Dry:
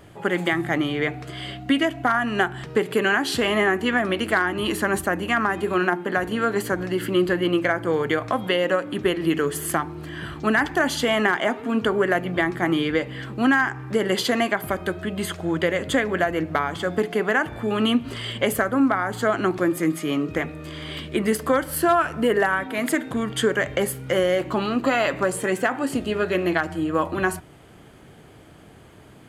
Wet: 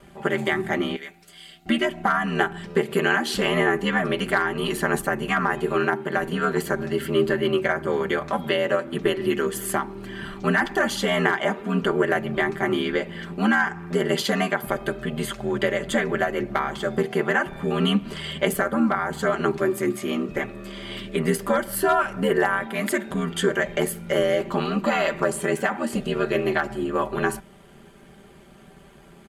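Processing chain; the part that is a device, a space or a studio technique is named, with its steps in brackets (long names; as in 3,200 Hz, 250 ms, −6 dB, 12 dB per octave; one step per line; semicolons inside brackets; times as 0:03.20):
0:00.96–0:01.66: first-order pre-emphasis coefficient 0.9
ring-modulated robot voice (ring modulation 40 Hz; comb filter 5.1 ms, depth 74%)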